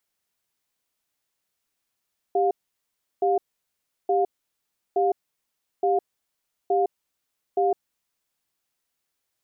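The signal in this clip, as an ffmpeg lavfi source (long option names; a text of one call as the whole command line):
ffmpeg -f lavfi -i "aevalsrc='0.0891*(sin(2*PI*394*t)+sin(2*PI*710*t))*clip(min(mod(t,0.87),0.16-mod(t,0.87))/0.005,0,1)':duration=5.73:sample_rate=44100" out.wav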